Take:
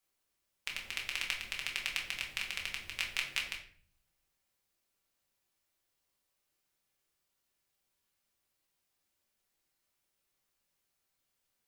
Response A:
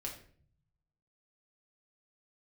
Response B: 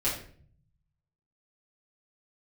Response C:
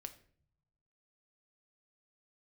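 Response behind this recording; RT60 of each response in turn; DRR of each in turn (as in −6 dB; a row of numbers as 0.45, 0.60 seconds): A; 0.50 s, 0.50 s, non-exponential decay; −1.5, −9.0, 7.5 decibels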